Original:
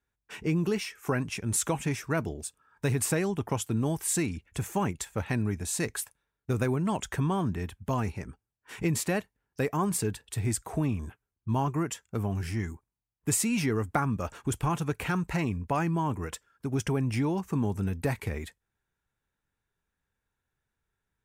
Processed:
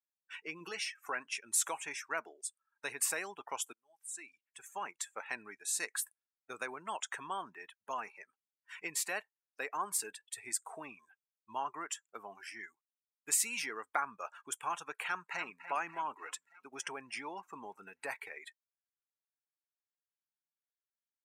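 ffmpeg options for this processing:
-filter_complex "[0:a]asettb=1/sr,asplit=3[a][b][c];[a]atrim=end=0.604[d];[b]atrim=start=0.6:end=1.04,asetpts=PTS-STARTPTS,afade=t=in:d=0.004:c=qsin,afade=t=out:st=0.436:d=0.004:c=qsin,aecho=1:1:6.2:0.57,atrim=end_sample=19404[e];[c]atrim=start=1.036[f];[d][e]acrossfade=d=0.004:c1=hsin:c2=qsin[g];[g][f]acrossfade=d=0.004:c1=qsin:c2=hsin,asplit=2[h][i];[i]afade=t=in:st=15.07:d=0.01,afade=t=out:st=15.61:d=0.01,aecho=0:1:290|580|870|1160|1450|1740|2030|2320|2610|2900:0.298538|0.208977|0.146284|0.102399|0.071679|0.0501753|0.0351227|0.0245859|0.0172101|0.0120471[j];[h][j]amix=inputs=2:normalize=0,asplit=2[k][l];[k]atrim=end=3.73,asetpts=PTS-STARTPTS,afade=t=out:st=3.726:d=0.004:c=hsin[m];[l]atrim=start=3.73,asetpts=PTS-STARTPTS,afade=t=in:d=1.44[n];[m][n]concat=n=2:v=0:a=1,highpass=930,afftdn=nr=20:nf=-47,volume=-2dB"

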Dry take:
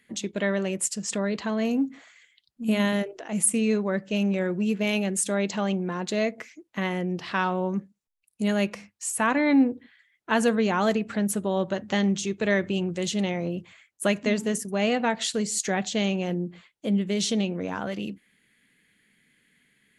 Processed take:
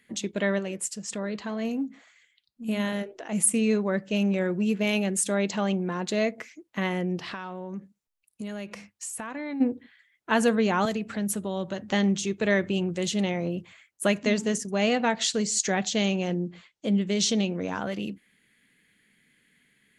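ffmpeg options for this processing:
-filter_complex "[0:a]asplit=3[a][b][c];[a]afade=t=out:st=0.58:d=0.02[d];[b]flanger=delay=0.1:depth=4.8:regen=87:speed=1.8:shape=sinusoidal,afade=t=in:st=0.58:d=0.02,afade=t=out:st=3.18:d=0.02[e];[c]afade=t=in:st=3.18:d=0.02[f];[d][e][f]amix=inputs=3:normalize=0,asplit=3[g][h][i];[g]afade=t=out:st=7.31:d=0.02[j];[h]acompressor=threshold=-32dB:ratio=6:attack=3.2:release=140:knee=1:detection=peak,afade=t=in:st=7.31:d=0.02,afade=t=out:st=9.6:d=0.02[k];[i]afade=t=in:st=9.6:d=0.02[l];[j][k][l]amix=inputs=3:normalize=0,asettb=1/sr,asplit=3[m][n][o];[m]atrim=end=10.854[p];[n]atrim=start=10.85:end=11.91,asetpts=PTS-STARTPTS,afade=t=in:d=0.004:c=qsin,afade=t=out:st=1.056:d=0.004:c=qsin,acrossover=split=160|3000[q][r][s];[r]acompressor=threshold=-37dB:ratio=1.5:attack=3.2:release=140:knee=2.83:detection=peak[t];[q][t][s]amix=inputs=3:normalize=0[u];[o]atrim=start=11.906[v];[p][u]acrossfade=d=0.004:c1=hsin:c2=qsin[w];[w][v]acrossfade=d=0.004:c1=qsin:c2=hsin,asettb=1/sr,asplit=3[x][y][z];[x]atrim=end=14.204[aa];[y]atrim=start=14.2:end=17.83,asetpts=PTS-STARTPTS,afade=t=in:d=0.004:c=qsin,afade=t=out:st=3.626:d=0.004:c=qsin,lowpass=f=6.6k:t=q:w=1.5[ab];[z]atrim=start=17.826[ac];[aa][ab]acrossfade=d=0.004:c1=hsin:c2=qsin[ad];[ad][ac]acrossfade=d=0.004:c1=qsin:c2=hsin"

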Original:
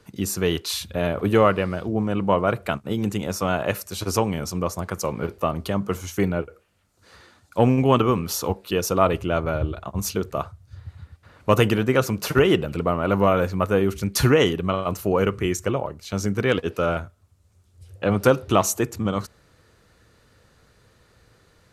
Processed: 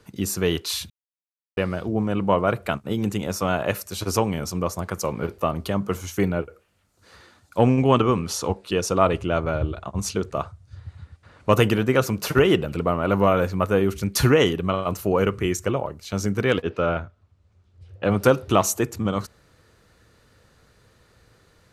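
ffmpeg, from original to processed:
-filter_complex "[0:a]asettb=1/sr,asplit=3[a][b][c];[a]atrim=end=7.614[d];[b]atrim=start=7.61:end=11.53,asetpts=PTS-STARTPTS,afade=t=in:d=0.004:c=qsin,afade=t=out:st=3.916:d=0.004:c=qsin,lowpass=f=10k:w=0.5412,lowpass=f=10k:w=1.3066[e];[c]atrim=start=11.526[f];[d][e]acrossfade=d=0.004:c1=hsin:c2=qsin[g];[g][f]acrossfade=d=0.004:c1=qsin:c2=hsin,asettb=1/sr,asplit=3[h][i][j];[h]atrim=end=16.624[k];[i]atrim=start=16.62:end=18.04,asetpts=PTS-STARTPTS,afade=t=in:d=0.004:c=qsin,afade=t=out:st=1.416:d=0.004:c=qsin,lowpass=3.7k[l];[j]atrim=start=18.036[m];[k][l]acrossfade=d=0.004:c1=hsin:c2=qsin[n];[n][m]acrossfade=d=0.004:c1=qsin:c2=hsin,asplit=3[o][p][q];[o]atrim=end=0.9,asetpts=PTS-STARTPTS,afade=t=out:st=0.896:d=0.004:c=hsin[r];[p]atrim=start=0.9:end=1.57,asetpts=PTS-STARTPTS,volume=0[s];[q]atrim=start=1.57,asetpts=PTS-STARTPTS,afade=t=in:d=0.004:c=hsin[t];[r][s][t]concat=n=3:v=0:a=1"

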